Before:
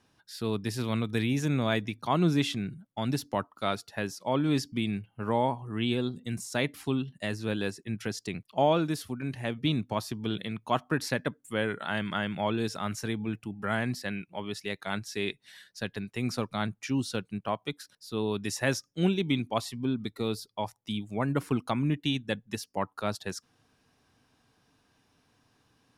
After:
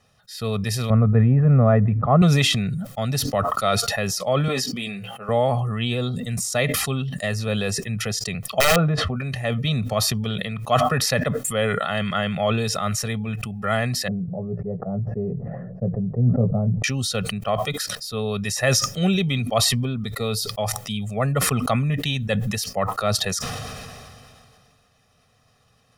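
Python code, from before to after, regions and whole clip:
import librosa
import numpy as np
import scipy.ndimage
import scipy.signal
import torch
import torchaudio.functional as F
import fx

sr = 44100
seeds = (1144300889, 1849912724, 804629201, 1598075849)

y = fx.chain(x, sr, fx.block_float(bits=7),
    fx.lowpass(hz=1500.0, slope=24),
    fx.low_shelf(hz=410.0, db=8.5), at=(0.9, 2.22))
y = fx.chain(y, sr, fx.cheby1_highpass(hz=300.0, order=2),
    fx.doubler(ms=16.0, db=-8),
    fx.band_widen(depth_pct=40), at=(4.48, 5.29))
y = fx.chain(y, sr, fx.lowpass(hz=1400.0, slope=12),
    fx.doubler(ms=13.0, db=-11.5),
    fx.overflow_wrap(gain_db=18.0), at=(8.6, 9.16))
y = fx.chain(y, sr, fx.cheby2_lowpass(hz=3600.0, order=4, stop_db=80),
    fx.peak_eq(hz=160.0, db=11.0, octaves=0.9),
    fx.doubler(ms=17.0, db=-7.5), at=(14.08, 16.84))
y = y + 0.91 * np.pad(y, (int(1.6 * sr / 1000.0), 0))[:len(y)]
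y = fx.sustainer(y, sr, db_per_s=24.0)
y = F.gain(torch.from_numpy(y), 4.0).numpy()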